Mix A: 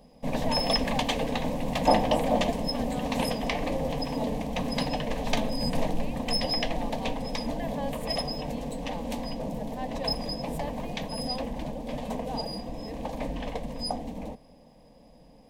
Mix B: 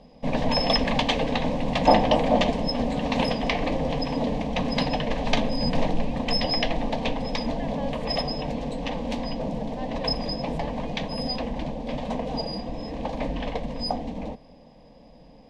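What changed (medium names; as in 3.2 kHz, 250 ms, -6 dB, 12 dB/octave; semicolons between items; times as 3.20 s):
background +5.0 dB; master: add Chebyshev low-pass 4.4 kHz, order 2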